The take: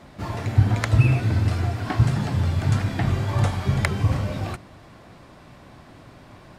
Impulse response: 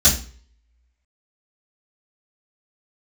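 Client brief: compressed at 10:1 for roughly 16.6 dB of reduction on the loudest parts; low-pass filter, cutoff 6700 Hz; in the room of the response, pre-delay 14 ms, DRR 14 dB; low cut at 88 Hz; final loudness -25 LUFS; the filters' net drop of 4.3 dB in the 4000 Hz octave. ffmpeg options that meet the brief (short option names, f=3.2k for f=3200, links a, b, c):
-filter_complex "[0:a]highpass=88,lowpass=6.7k,equalizer=f=4k:t=o:g=-5,acompressor=threshold=-30dB:ratio=10,asplit=2[a][b];[1:a]atrim=start_sample=2205,adelay=14[c];[b][c]afir=irnorm=-1:irlink=0,volume=-32dB[d];[a][d]amix=inputs=2:normalize=0,volume=9dB"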